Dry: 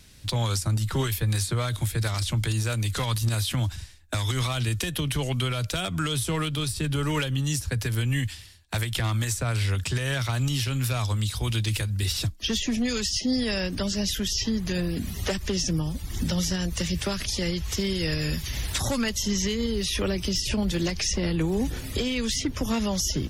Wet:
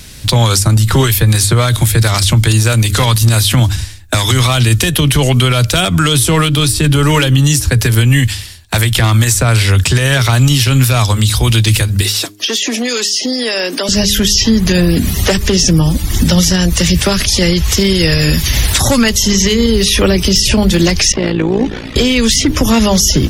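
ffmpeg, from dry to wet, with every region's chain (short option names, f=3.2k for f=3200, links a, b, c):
-filter_complex "[0:a]asettb=1/sr,asplit=3[a][b][c];[a]atrim=end=12.014[d];[b]atrim=start=12.01:end=13.89,asetpts=PTS-STARTPTS,afade=t=in:d=0.004:c=qsin,afade=t=out:st=1.876:d=0.004:c=qsin,highpass=f=300:w=0.5412,highpass=f=300:w=1.3066,acompressor=threshold=-30dB:ratio=6:attack=3.2:release=140:knee=1:detection=peak[e];[c]atrim=start=13.886[f];[d][e]acrossfade=d=0.004:c1=hsin:c2=qsin[g];[g][f]acrossfade=d=0.004:c1=qsin:c2=hsin,asettb=1/sr,asplit=3[h][i][j];[h]atrim=end=21.124[k];[i]atrim=start=21.12:end=21.96,asetpts=PTS-STARTPTS,afade=t=in:d=0.004:c=qsin,afade=t=out:st=0.836:d=0.004:c=qsin,acrossover=split=180 4600:gain=0.251 1 0.2[l][m][n];[l][m][n]amix=inputs=3:normalize=0,tremolo=f=57:d=0.75,adynamicsmooth=sensitivity=7:basefreq=5.6k[o];[j]atrim=start=21.956[p];[k][o]acrossfade=d=0.004:c1=hsin:c2=qsin[q];[q][p]acrossfade=d=0.004:c1=qsin:c2=hsin,highshelf=f=8.9k:g=3.5,bandreject=f=102.8:t=h:w=4,bandreject=f=205.6:t=h:w=4,bandreject=f=308.4:t=h:w=4,bandreject=f=411.2:t=h:w=4,alimiter=level_in=19dB:limit=-1dB:release=50:level=0:latency=1,volume=-1dB"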